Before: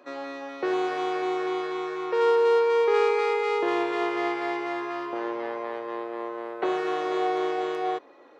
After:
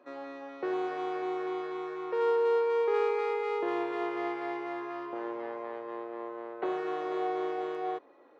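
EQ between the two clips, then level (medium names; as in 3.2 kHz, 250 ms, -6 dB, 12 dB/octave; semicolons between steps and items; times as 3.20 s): treble shelf 2.8 kHz -10 dB; -5.5 dB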